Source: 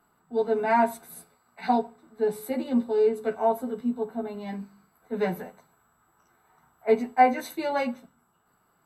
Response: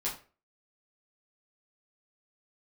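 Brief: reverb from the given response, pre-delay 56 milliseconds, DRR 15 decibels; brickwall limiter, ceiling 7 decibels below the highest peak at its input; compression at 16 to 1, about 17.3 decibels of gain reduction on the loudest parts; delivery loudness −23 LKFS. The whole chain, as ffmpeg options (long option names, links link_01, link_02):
-filter_complex "[0:a]acompressor=threshold=-31dB:ratio=16,alimiter=level_in=5dB:limit=-24dB:level=0:latency=1,volume=-5dB,asplit=2[link_01][link_02];[1:a]atrim=start_sample=2205,adelay=56[link_03];[link_02][link_03]afir=irnorm=-1:irlink=0,volume=-19dB[link_04];[link_01][link_04]amix=inputs=2:normalize=0,volume=16.5dB"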